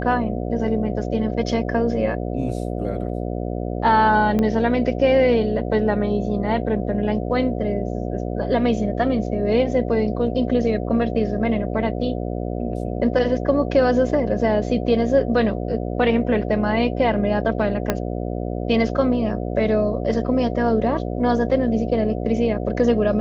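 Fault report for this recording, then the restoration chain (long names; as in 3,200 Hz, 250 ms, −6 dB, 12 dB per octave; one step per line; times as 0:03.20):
mains buzz 60 Hz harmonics 12 −26 dBFS
0:04.39: click −11 dBFS
0:17.90: click −5 dBFS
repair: click removal
hum removal 60 Hz, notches 12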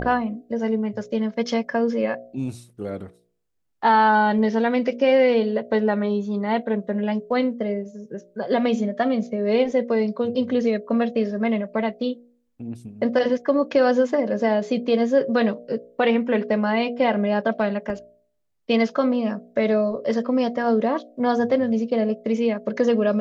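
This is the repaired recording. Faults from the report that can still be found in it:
0:04.39: click
0:17.90: click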